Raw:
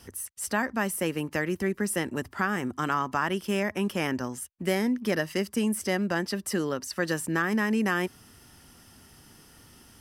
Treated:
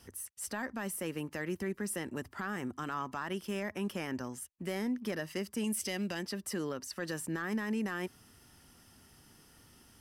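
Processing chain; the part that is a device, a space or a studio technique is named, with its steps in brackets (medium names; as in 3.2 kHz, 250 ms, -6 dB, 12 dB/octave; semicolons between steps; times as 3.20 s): 5.64–6.23 s: resonant high shelf 2 kHz +7 dB, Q 1.5; soft clipper into limiter (saturation -13.5 dBFS, distortion -24 dB; peak limiter -20.5 dBFS, peak gain reduction 5.5 dB); trim -6.5 dB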